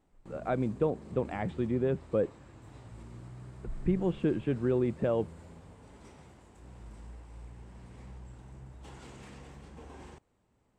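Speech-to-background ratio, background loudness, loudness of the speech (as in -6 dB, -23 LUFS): 18.5 dB, -50.0 LUFS, -31.5 LUFS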